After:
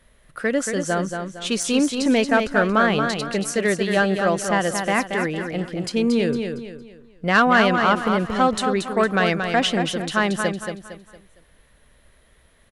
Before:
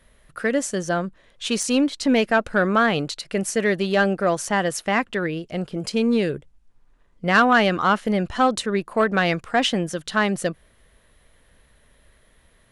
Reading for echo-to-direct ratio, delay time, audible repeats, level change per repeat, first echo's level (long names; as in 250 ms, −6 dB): −5.5 dB, 229 ms, 4, −9.0 dB, −6.0 dB